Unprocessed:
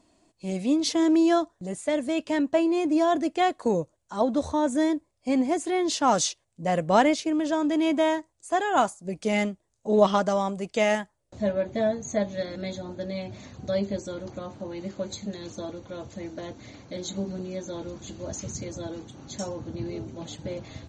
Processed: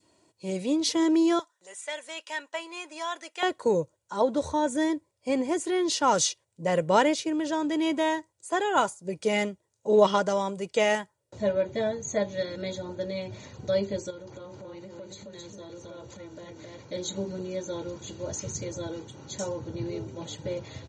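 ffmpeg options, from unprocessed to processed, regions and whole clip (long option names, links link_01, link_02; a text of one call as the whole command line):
ffmpeg -i in.wav -filter_complex "[0:a]asettb=1/sr,asplit=3[link_01][link_02][link_03];[link_01]atrim=end=1.394[link_04];[link_02]atrim=start=1.39:end=3.43,asetpts=PTS-STARTPTS,afade=type=in:duration=0.004:curve=qsin,afade=type=out:start_time=2.036:duration=0.004:curve=qsin,highpass=1200,bandreject=frequency=4500:width=9.8,acrossover=split=9400[link_05][link_06];[link_06]acompressor=threshold=-57dB:ratio=4:attack=1:release=60[link_07];[link_05][link_07]amix=inputs=2:normalize=0[link_08];[link_03]atrim=start=3.426[link_09];[link_04][link_08]acrossfade=duration=0.004:curve1=hsin:curve2=qsin[link_10];[link_10][link_09]acrossfade=duration=0.004:curve1=qsin:curve2=hsin,asettb=1/sr,asplit=3[link_11][link_12][link_13];[link_11]atrim=end=14.104[link_14];[link_12]atrim=start=14.1:end=16.79,asetpts=PTS-STARTPTS,afade=type=in:duration=0.004:curve=qsin,afade=type=out:start_time=2.686:duration=0.004:curve=qsin,aecho=1:1:266:0.562,atrim=end_sample=118629,acompressor=threshold=-40dB:ratio=6:attack=3.2:release=140:knee=1:detection=peak[link_15];[link_13]atrim=start=16.786[link_16];[link_14][link_15]acrossfade=duration=0.004:curve1=hsin:curve2=qsin[link_17];[link_17][link_16]acrossfade=duration=0.004:curve1=qsin:curve2=hsin,highpass=frequency=88:width=0.5412,highpass=frequency=88:width=1.3066,adynamicequalizer=threshold=0.0158:dfrequency=730:dqfactor=0.78:tfrequency=730:tqfactor=0.78:attack=5:release=100:ratio=0.375:range=2:mode=cutabove:tftype=bell,aecho=1:1:2.1:0.48" out.wav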